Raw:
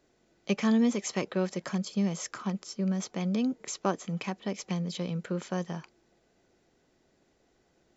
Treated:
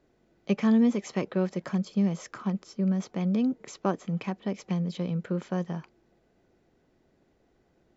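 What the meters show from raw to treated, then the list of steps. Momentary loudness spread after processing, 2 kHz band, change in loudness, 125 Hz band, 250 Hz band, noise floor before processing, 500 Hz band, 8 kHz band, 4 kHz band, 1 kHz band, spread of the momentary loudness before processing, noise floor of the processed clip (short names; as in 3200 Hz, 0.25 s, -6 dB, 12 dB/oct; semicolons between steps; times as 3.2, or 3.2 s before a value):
9 LU, -2.0 dB, +2.5 dB, +3.5 dB, +3.0 dB, -70 dBFS, +1.5 dB, n/a, -5.0 dB, 0.0 dB, 9 LU, -68 dBFS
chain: LPF 2500 Hz 6 dB/oct; low shelf 320 Hz +4.5 dB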